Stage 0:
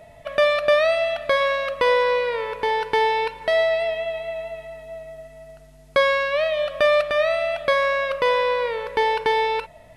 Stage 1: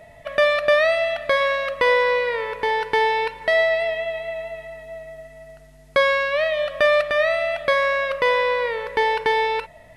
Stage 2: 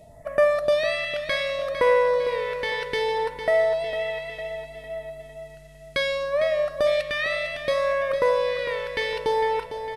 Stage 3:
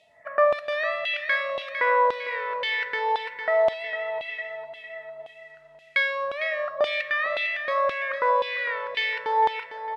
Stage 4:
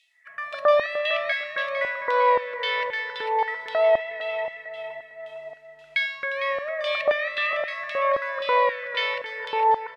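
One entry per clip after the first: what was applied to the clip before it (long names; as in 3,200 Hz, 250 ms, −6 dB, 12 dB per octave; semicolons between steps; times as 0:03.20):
parametric band 1,900 Hz +6.5 dB 0.24 octaves
all-pass phaser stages 2, 0.65 Hz, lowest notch 630–3,400 Hz; on a send: repeating echo 454 ms, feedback 49%, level −10 dB
high-shelf EQ 5,500 Hz −5 dB; auto-filter band-pass saw down 1.9 Hz 840–3,200 Hz; level +8 dB
multiband delay without the direct sound highs, lows 270 ms, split 1,700 Hz; level +2 dB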